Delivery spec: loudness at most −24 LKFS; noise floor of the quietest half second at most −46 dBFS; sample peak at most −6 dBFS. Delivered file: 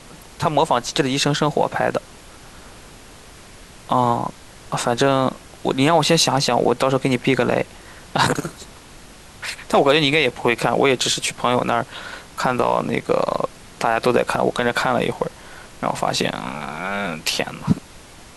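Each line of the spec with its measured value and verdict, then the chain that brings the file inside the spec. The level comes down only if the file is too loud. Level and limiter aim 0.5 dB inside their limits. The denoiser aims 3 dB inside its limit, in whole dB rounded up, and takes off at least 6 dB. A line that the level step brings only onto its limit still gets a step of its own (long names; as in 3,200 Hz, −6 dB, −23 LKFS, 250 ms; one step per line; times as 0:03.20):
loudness −20.0 LKFS: out of spec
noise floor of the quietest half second −42 dBFS: out of spec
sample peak −4.5 dBFS: out of spec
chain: level −4.5 dB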